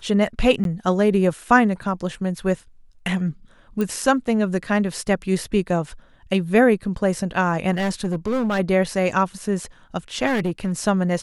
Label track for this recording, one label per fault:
0.640000	0.650000	dropout 12 ms
3.810000	3.810000	pop -13 dBFS
7.730000	8.600000	clipped -18.5 dBFS
10.260000	10.730000	clipped -18 dBFS

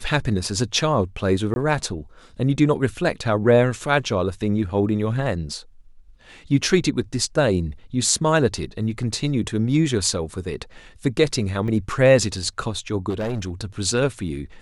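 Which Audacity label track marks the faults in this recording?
1.540000	1.560000	dropout 21 ms
11.680000	11.680000	dropout 2.9 ms
13.090000	13.500000	clipped -21.5 dBFS

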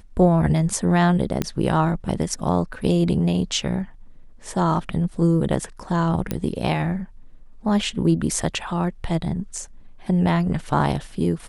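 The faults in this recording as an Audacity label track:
1.420000	1.420000	pop -9 dBFS
6.310000	6.310000	pop -10 dBFS

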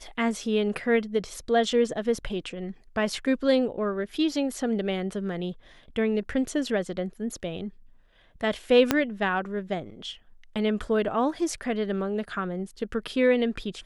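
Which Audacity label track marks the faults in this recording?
8.910000	8.910000	pop -5 dBFS

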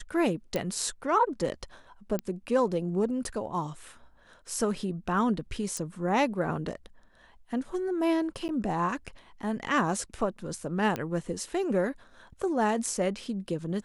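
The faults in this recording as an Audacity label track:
0.560000	0.560000	pop -16 dBFS
2.190000	2.190000	pop -17 dBFS
5.770000	5.770000	pop -21 dBFS
8.480000	8.490000	dropout 9.8 ms
10.960000	10.960000	pop -17 dBFS

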